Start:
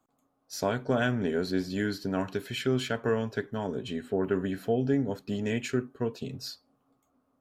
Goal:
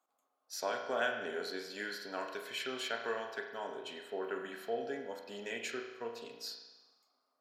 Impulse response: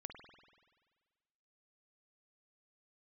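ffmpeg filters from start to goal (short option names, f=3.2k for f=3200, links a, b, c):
-filter_complex "[0:a]highpass=610[a];[1:a]atrim=start_sample=2205,asetrate=61740,aresample=44100[b];[a][b]afir=irnorm=-1:irlink=0,volume=4.5dB"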